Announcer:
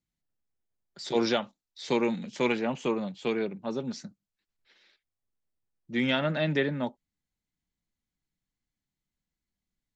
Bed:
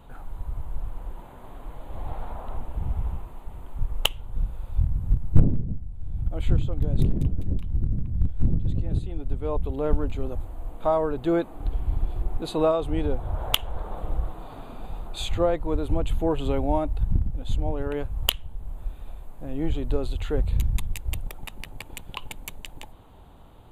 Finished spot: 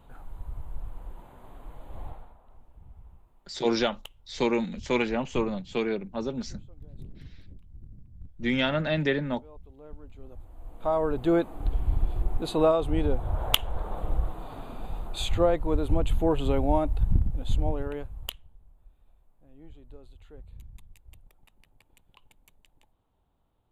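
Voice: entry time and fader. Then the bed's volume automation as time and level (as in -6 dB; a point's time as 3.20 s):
2.50 s, +1.0 dB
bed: 2.05 s -5.5 dB
2.39 s -22 dB
9.95 s -22 dB
11.11 s 0 dB
17.68 s 0 dB
18.75 s -23 dB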